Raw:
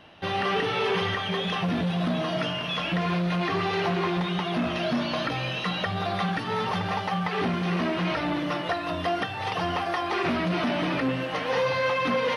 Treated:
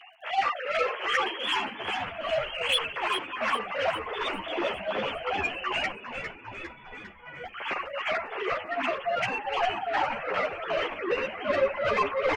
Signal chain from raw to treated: formants replaced by sine waves; bass shelf 340 Hz -9.5 dB; in parallel at -2 dB: peak limiter -22.5 dBFS, peak gain reduction 10 dB; on the sum: tremolo 2.6 Hz, depth 78%; crackle 45 per s -55 dBFS; 5.93–7.44 s: feedback comb 490 Hz, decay 0.3 s, harmonics all, mix 100%; saturation -20.5 dBFS, distortion -15 dB; on a send: frequency-shifting echo 403 ms, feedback 60%, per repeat -130 Hz, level -8 dB; on the sum: three-phase chorus; trim +2.5 dB

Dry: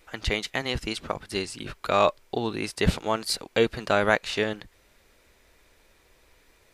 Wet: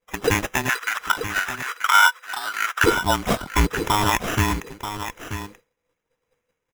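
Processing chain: every band turned upside down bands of 500 Hz; band-stop 2.8 kHz, Q 27; sample-and-hold 10×; peak limiter -14 dBFS, peak gain reduction 8.5 dB; 0.69–2.84 s: resonant high-pass 1.4 kHz, resonance Q 3.2; delay 933 ms -10 dB; expander -43 dBFS; trim +6.5 dB

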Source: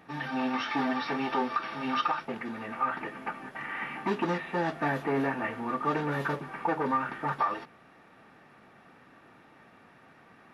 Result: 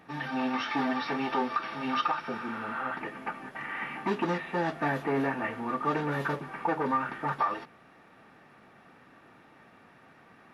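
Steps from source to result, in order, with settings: spectral replace 2.26–2.87 s, 800–6400 Hz both

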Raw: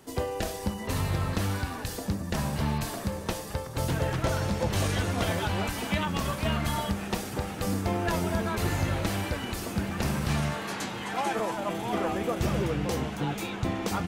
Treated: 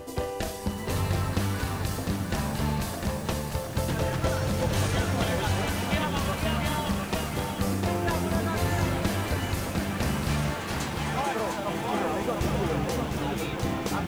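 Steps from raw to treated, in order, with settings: reverse echo 195 ms -12.5 dB; bit-crushed delay 703 ms, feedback 35%, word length 8-bit, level -4.5 dB

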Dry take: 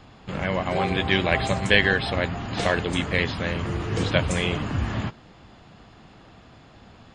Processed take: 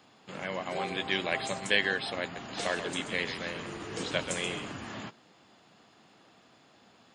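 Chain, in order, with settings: high-pass 220 Hz 12 dB/octave; treble shelf 5.6 kHz +11.5 dB; 2.22–4.73 s: frequency-shifting echo 132 ms, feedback 30%, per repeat -43 Hz, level -9 dB; trim -9 dB

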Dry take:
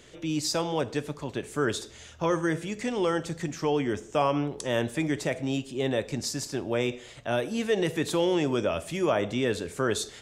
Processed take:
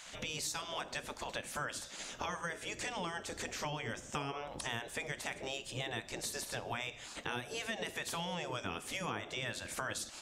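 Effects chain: spectral gate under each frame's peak -10 dB weak; compression 5:1, threshold -44 dBFS, peak gain reduction 15.5 dB; trim +6.5 dB

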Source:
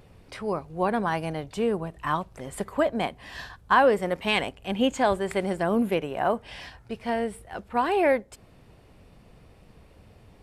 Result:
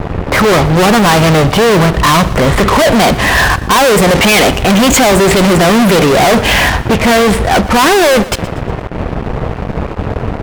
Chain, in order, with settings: level-controlled noise filter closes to 1.3 kHz, open at -19.5 dBFS; gate with hold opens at -46 dBFS; fuzz box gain 49 dB, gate -54 dBFS; on a send: feedback delay 119 ms, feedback 46%, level -18 dB; on the sum: trim +6.5 dB

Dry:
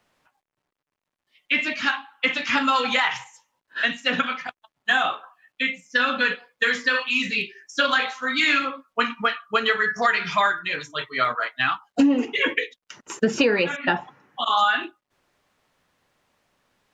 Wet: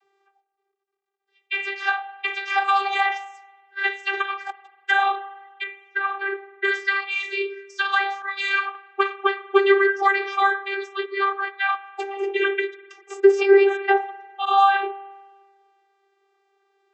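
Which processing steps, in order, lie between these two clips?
4.40–4.91 s: companded quantiser 4-bit; 5.63–6.64 s: low-pass 1.5 kHz 12 dB/octave; vocoder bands 32, saw 394 Hz; reverberation RT60 1.5 s, pre-delay 48 ms, DRR 16.5 dB; 8.22–8.75 s: three bands expanded up and down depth 100%; trim +2 dB

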